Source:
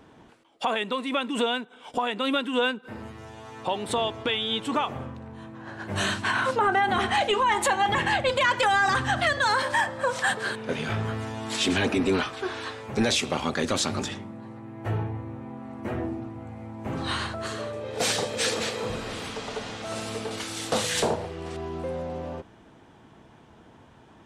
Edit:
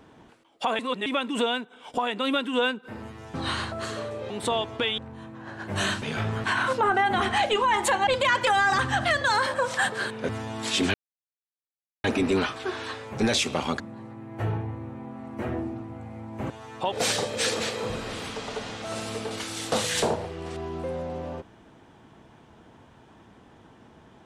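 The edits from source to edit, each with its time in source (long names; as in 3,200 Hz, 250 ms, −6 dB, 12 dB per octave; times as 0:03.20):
0:00.79–0:01.06: reverse
0:03.34–0:03.76: swap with 0:16.96–0:17.92
0:04.44–0:05.18: remove
0:07.85–0:08.23: remove
0:09.70–0:09.99: remove
0:10.74–0:11.16: move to 0:06.22
0:11.81: splice in silence 1.10 s
0:13.57–0:14.26: remove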